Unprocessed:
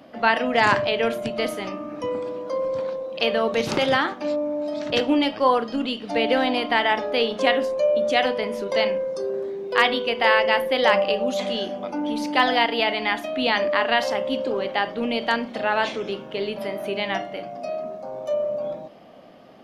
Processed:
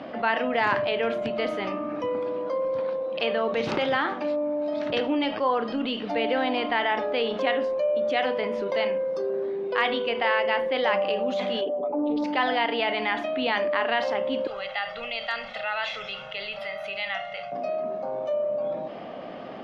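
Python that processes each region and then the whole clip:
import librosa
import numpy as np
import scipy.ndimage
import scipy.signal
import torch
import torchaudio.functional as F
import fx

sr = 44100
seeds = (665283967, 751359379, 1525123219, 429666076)

y = fx.chain(x, sr, fx.envelope_sharpen(power=2.0),
    fx.comb(ms=7.1, depth=0.88),
    fx.doppler_dist(depth_ms=0.17), at=(11.61, 12.24))
y = fx.chain(y, sr, fx.tone_stack(knobs='10-0-10'),
    fx.comb(ms=1.5, depth=0.66), at=(14.47, 17.52))
y = scipy.signal.sosfilt(scipy.signal.butter(2, 3100.0, 'lowpass', fs=sr, output='sos'), y)
y = fx.low_shelf(y, sr, hz=180.0, db=-7.0)
y = fx.env_flatten(y, sr, amount_pct=50)
y = y * 10.0 ** (-6.0 / 20.0)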